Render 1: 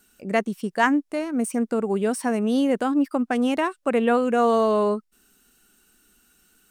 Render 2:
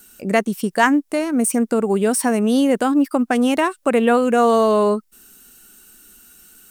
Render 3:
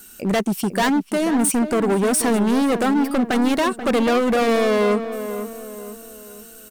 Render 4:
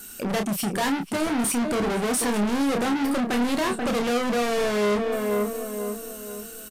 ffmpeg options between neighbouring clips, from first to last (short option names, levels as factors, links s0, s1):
-filter_complex "[0:a]asplit=2[s0][s1];[s1]acompressor=threshold=0.0447:ratio=6,volume=1[s2];[s0][s2]amix=inputs=2:normalize=0,highshelf=f=7700:g=10,volume=1.26"
-filter_complex "[0:a]volume=10.6,asoftclip=hard,volume=0.0944,asplit=2[s0][s1];[s1]adelay=485,lowpass=f=1700:p=1,volume=0.335,asplit=2[s2][s3];[s3]adelay=485,lowpass=f=1700:p=1,volume=0.45,asplit=2[s4][s5];[s5]adelay=485,lowpass=f=1700:p=1,volume=0.45,asplit=2[s6][s7];[s7]adelay=485,lowpass=f=1700:p=1,volume=0.45,asplit=2[s8][s9];[s9]adelay=485,lowpass=f=1700:p=1,volume=0.45[s10];[s0][s2][s4][s6][s8][s10]amix=inputs=6:normalize=0,volume=1.58"
-filter_complex "[0:a]asoftclip=type=hard:threshold=0.0501,asplit=2[s0][s1];[s1]adelay=29,volume=0.501[s2];[s0][s2]amix=inputs=2:normalize=0,aresample=32000,aresample=44100,volume=1.26"